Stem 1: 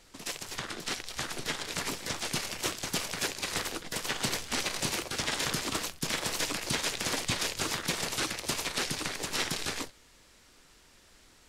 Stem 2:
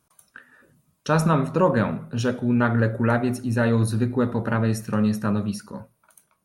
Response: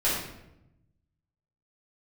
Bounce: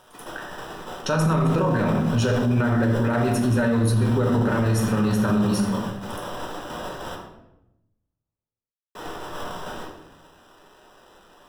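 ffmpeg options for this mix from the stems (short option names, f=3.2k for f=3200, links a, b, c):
-filter_complex "[0:a]acrusher=samples=20:mix=1:aa=0.000001,asplit=2[a][b];[b]highpass=f=720:p=1,volume=18dB,asoftclip=type=tanh:threshold=-27dB[c];[a][c]amix=inputs=2:normalize=0,lowpass=f=7.7k:p=1,volume=-6dB,volume=-7.5dB,asplit=3[d][e][f];[d]atrim=end=7.15,asetpts=PTS-STARTPTS,afade=t=out:st=7.146:d=0.004:c=hsin[g];[e]atrim=start=7.15:end=8.95,asetpts=PTS-STARTPTS,volume=0[h];[f]atrim=start=8.95,asetpts=PTS-STARTPTS,afade=t=in:d=0.004:c=hsin[i];[g][h][i]concat=n=3:v=0:a=1,asplit=2[j][k];[k]volume=-8.5dB[l];[1:a]alimiter=limit=-15dB:level=0:latency=1,volume=2.5dB,asplit=2[m][n];[n]volume=-9.5dB[o];[2:a]atrim=start_sample=2205[p];[l][o]amix=inputs=2:normalize=0[q];[q][p]afir=irnorm=-1:irlink=0[r];[j][m][r]amix=inputs=3:normalize=0,alimiter=limit=-13.5dB:level=0:latency=1:release=20"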